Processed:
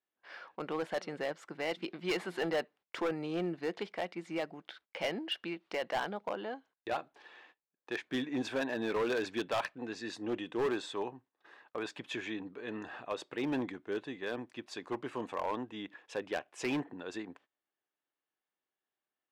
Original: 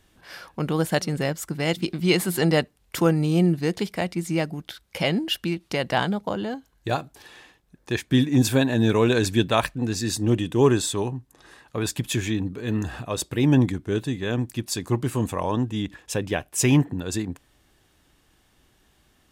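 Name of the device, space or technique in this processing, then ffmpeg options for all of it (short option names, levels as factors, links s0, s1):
walkie-talkie: -af "highpass=430,lowpass=2700,asoftclip=type=hard:threshold=0.0841,agate=range=0.0891:threshold=0.002:ratio=16:detection=peak,volume=0.501"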